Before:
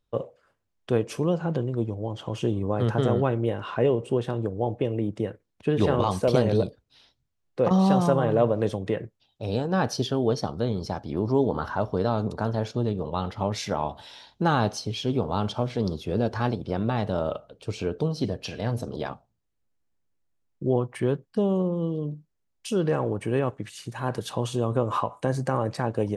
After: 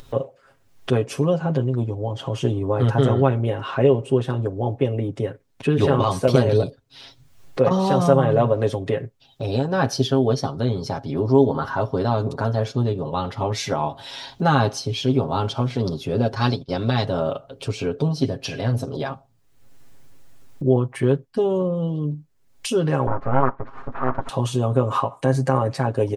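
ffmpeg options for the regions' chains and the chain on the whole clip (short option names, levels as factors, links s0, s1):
-filter_complex "[0:a]asettb=1/sr,asplit=3[s0][s1][s2];[s0]atrim=end=16.354[s3];[s1]atrim=start=16.35:end=17.06,asetpts=PTS-STARTPTS,afade=t=in:d=0.004:c=qsin,afade=t=out:st=0.706:d=0.004:c=qsin,agate=range=0.0224:threshold=0.0398:ratio=3:release=100:detection=peak,equalizer=f=4600:t=o:w=1.1:g=12.5[s4];[s2]atrim=start=17.056[s5];[s3][s4]acrossfade=d=0.004:c1=hsin:c2=qsin[s6];[s6][s5]acrossfade=d=0.004:c1=qsin:c2=hsin,asettb=1/sr,asplit=3[s7][s8][s9];[s7]atrim=end=23.074[s10];[s8]atrim=start=23.07:end=24.29,asetpts=PTS-STARTPTS,afade=t=in:d=0.004:c=qsin,afade=t=out:st=1.216:d=0.004:c=qsin,aeval=exprs='abs(val(0))':c=same,lowpass=f=1200:t=q:w=3.2[s11];[s9]atrim=start=24.286[s12];[s10][s11]acrossfade=d=0.004:c1=hsin:c2=qsin[s13];[s13][s12]acrossfade=d=0.004:c1=qsin:c2=hsin,aecho=1:1:7.4:0.77,acompressor=mode=upward:threshold=0.0501:ratio=2.5,volume=1.33"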